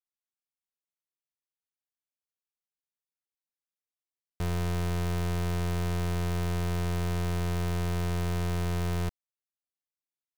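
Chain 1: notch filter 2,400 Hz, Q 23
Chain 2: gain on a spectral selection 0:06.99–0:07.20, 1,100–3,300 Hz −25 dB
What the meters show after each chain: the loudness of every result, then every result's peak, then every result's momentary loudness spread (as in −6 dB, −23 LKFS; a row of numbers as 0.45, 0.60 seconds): −31.0, −31.0 LKFS; −28.0, −27.0 dBFS; 1, 1 LU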